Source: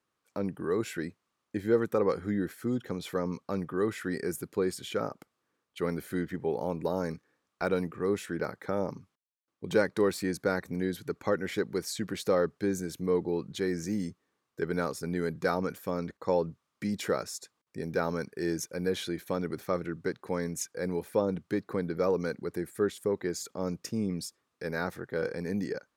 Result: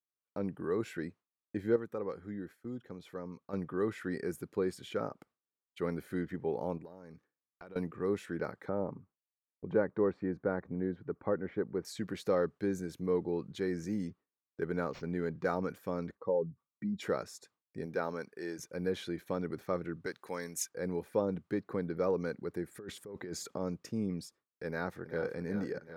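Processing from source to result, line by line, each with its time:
0:01.76–0:03.53: clip gain −7.5 dB
0:06.77–0:07.76: downward compressor 16 to 1, threshold −41 dBFS
0:08.69–0:11.85: low-pass filter 1,300 Hz
0:14.07–0:15.54: linearly interpolated sample-rate reduction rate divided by 4×
0:16.15–0:17.02: expanding power law on the bin magnitudes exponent 1.7
0:17.85–0:18.58: high-pass filter 210 Hz → 670 Hz 6 dB per octave
0:20.06–0:20.69: spectral tilt +3.5 dB per octave
0:22.71–0:23.58: compressor whose output falls as the input rises −37 dBFS
0:24.67–0:25.40: delay throw 380 ms, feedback 70%, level −11 dB
whole clip: noise gate with hold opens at −43 dBFS; high-shelf EQ 3,700 Hz −9 dB; level −3.5 dB

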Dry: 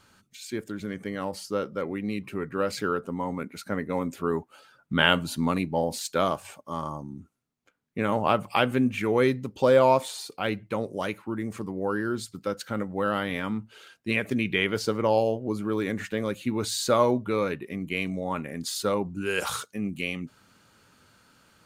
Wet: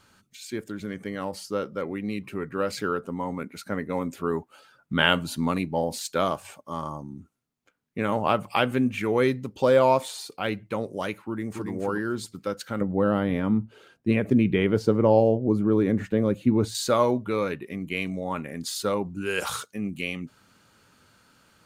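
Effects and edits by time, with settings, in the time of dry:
0:11.24–0:11.70: delay throw 280 ms, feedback 15%, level −4.5 dB
0:12.81–0:16.75: tilt shelving filter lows +8.5 dB, about 940 Hz

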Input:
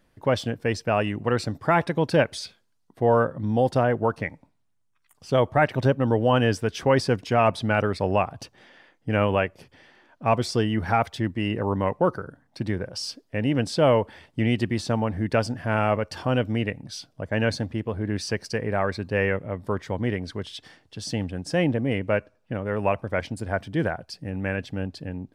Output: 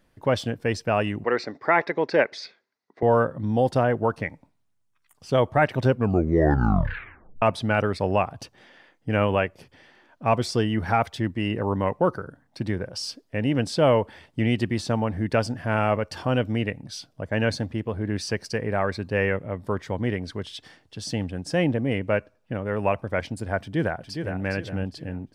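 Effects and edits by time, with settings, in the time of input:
0:01.24–0:03.03: loudspeaker in its box 320–5,300 Hz, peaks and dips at 400 Hz +5 dB, 2,000 Hz +9 dB, 3,100 Hz −9 dB
0:05.83: tape stop 1.59 s
0:23.61–0:24.42: delay throw 410 ms, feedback 35%, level −6.5 dB

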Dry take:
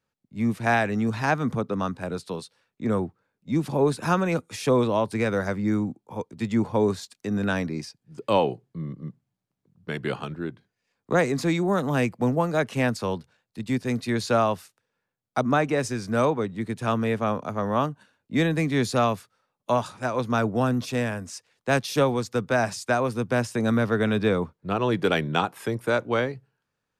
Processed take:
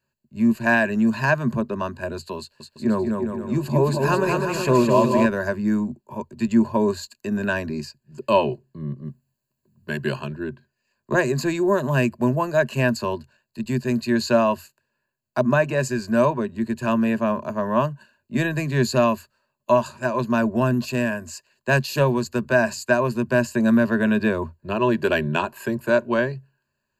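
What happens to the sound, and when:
0:02.39–0:05.26: bouncing-ball delay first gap 210 ms, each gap 0.75×, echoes 5
0:09.05–0:10.20: high-shelf EQ 6,200 Hz +8.5 dB
whole clip: EQ curve with evenly spaced ripples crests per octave 1.4, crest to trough 15 dB

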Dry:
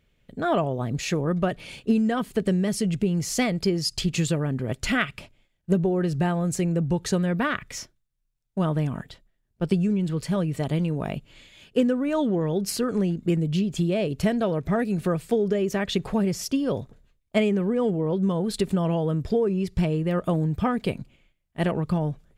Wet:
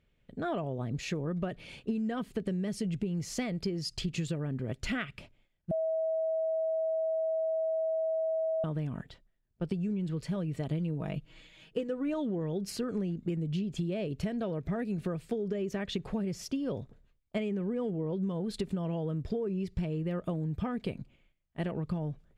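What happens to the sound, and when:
0:05.71–0:08.64: beep over 644 Hz −17 dBFS
0:10.70–0:12.14: comb filter 6.3 ms
whole clip: low-pass filter 3,600 Hz 6 dB per octave; dynamic equaliser 1,000 Hz, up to −4 dB, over −42 dBFS, Q 0.9; downward compressor, threshold −24 dBFS; level −5 dB

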